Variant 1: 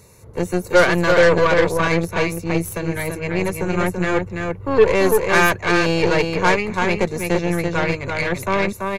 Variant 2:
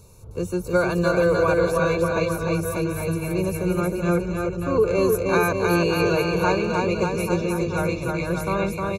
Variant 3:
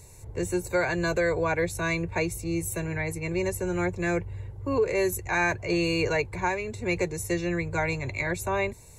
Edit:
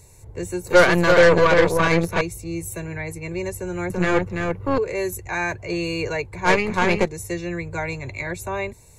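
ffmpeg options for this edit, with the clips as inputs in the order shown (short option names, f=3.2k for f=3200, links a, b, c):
-filter_complex "[0:a]asplit=3[a][b][c];[2:a]asplit=4[d][e][f][g];[d]atrim=end=0.672[h];[a]atrim=start=0.668:end=2.212[i];[e]atrim=start=2.208:end=3.902[j];[b]atrim=start=3.898:end=4.782[k];[f]atrim=start=4.778:end=6.5[l];[c]atrim=start=6.44:end=7.09[m];[g]atrim=start=7.03[n];[h][i]acrossfade=d=0.004:c1=hsin:c2=hsin[o];[o][j]acrossfade=d=0.004:c1=hsin:c2=hsin[p];[p][k]acrossfade=d=0.004:c1=hsin:c2=hsin[q];[q][l]acrossfade=d=0.004:c1=hsin:c2=hsin[r];[r][m]acrossfade=d=0.06:c1=tri:c2=tri[s];[s][n]acrossfade=d=0.06:c1=tri:c2=tri"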